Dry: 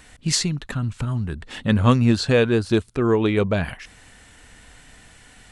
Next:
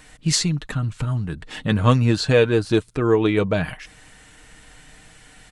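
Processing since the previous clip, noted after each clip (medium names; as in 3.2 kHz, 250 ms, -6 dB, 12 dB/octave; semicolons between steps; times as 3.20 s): comb 6.5 ms, depth 42%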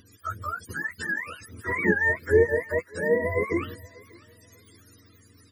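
spectrum inverted on a logarithmic axis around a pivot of 460 Hz; static phaser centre 320 Hz, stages 4; thinning echo 592 ms, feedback 34%, high-pass 420 Hz, level -22 dB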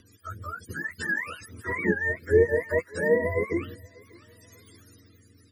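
rotary cabinet horn 0.6 Hz; trim +1.5 dB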